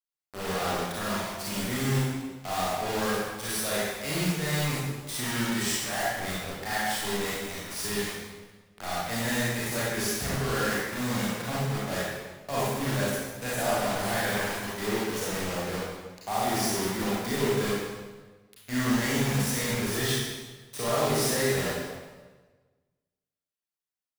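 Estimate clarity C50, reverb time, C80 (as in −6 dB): −3.0 dB, 1.4 s, 0.0 dB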